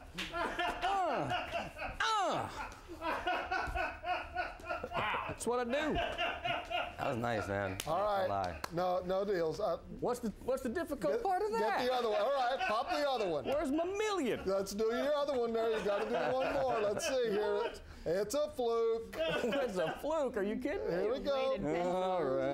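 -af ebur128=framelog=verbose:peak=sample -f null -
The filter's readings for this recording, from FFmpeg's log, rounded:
Integrated loudness:
  I:         -35.1 LUFS
  Threshold: -45.2 LUFS
Loudness range:
  LRA:         2.7 LU
  Threshold: -55.2 LUFS
  LRA low:   -36.6 LUFS
  LRA high:  -33.9 LUFS
Sample peak:
  Peak:      -22.4 dBFS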